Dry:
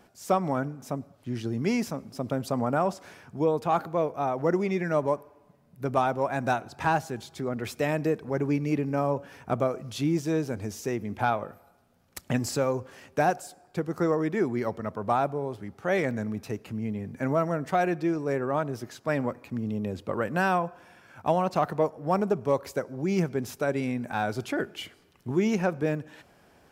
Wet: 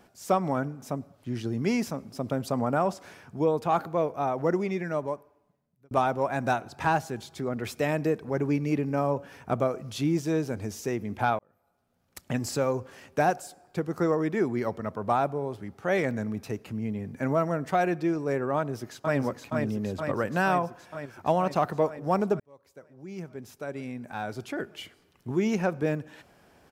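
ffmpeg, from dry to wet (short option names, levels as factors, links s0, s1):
-filter_complex "[0:a]asplit=2[s0][s1];[s1]afade=t=in:st=18.57:d=0.01,afade=t=out:st=19.17:d=0.01,aecho=0:1:470|940|1410|1880|2350|2820|3290|3760|4230|4700|5170|5640:0.630957|0.473218|0.354914|0.266185|0.199639|0.149729|0.112297|0.0842226|0.063167|0.0473752|0.0355314|0.0266486[s2];[s0][s2]amix=inputs=2:normalize=0,asplit=4[s3][s4][s5][s6];[s3]atrim=end=5.91,asetpts=PTS-STARTPTS,afade=t=out:st=4.37:d=1.54[s7];[s4]atrim=start=5.91:end=11.39,asetpts=PTS-STARTPTS,afade=t=in:d=0.004:c=hsin,afade=t=out:st=5.476:d=0.004:c=hsin[s8];[s5]atrim=start=11.39:end=22.4,asetpts=PTS-STARTPTS,afade=t=in:d=1.29,afade=t=out:st=11.006:d=0.004:c=hsin[s9];[s6]atrim=start=22.4,asetpts=PTS-STARTPTS,afade=t=in:d=3.47[s10];[s7][s8][s9][s10]concat=n=4:v=0:a=1"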